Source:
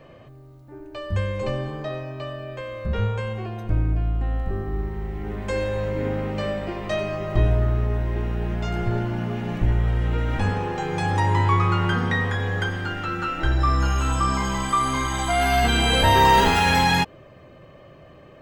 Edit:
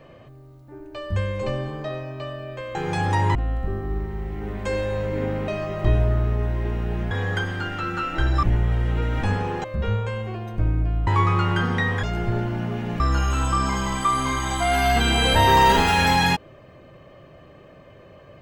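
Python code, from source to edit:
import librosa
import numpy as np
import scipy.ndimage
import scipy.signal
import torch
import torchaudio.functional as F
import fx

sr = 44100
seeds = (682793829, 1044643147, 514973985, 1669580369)

y = fx.edit(x, sr, fx.swap(start_s=2.75, length_s=1.43, other_s=10.8, other_length_s=0.6),
    fx.cut(start_s=6.31, length_s=0.68),
    fx.swap(start_s=8.62, length_s=0.97, other_s=12.36, other_length_s=1.32), tone=tone)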